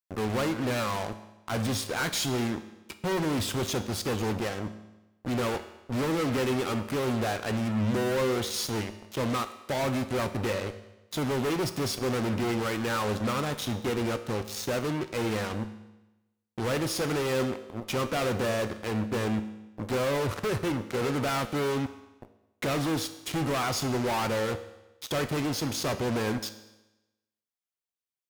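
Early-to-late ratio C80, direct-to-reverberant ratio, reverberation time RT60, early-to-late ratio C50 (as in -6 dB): 14.0 dB, 9.0 dB, 1.0 s, 12.0 dB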